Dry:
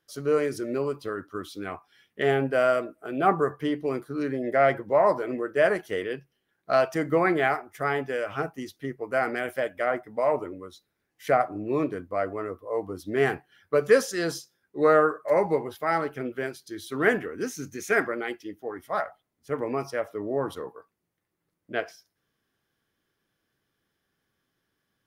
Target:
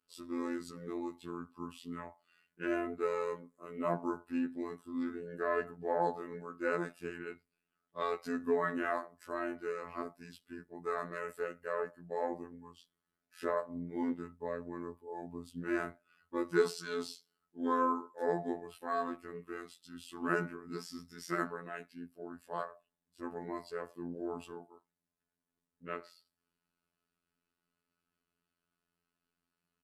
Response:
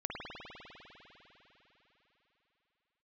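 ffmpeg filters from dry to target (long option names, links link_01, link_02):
-af "asetrate=37044,aresample=44100,aecho=1:1:4.7:0.62,afftfilt=real='hypot(re,im)*cos(PI*b)':imag='0':win_size=2048:overlap=0.75,volume=-8dB"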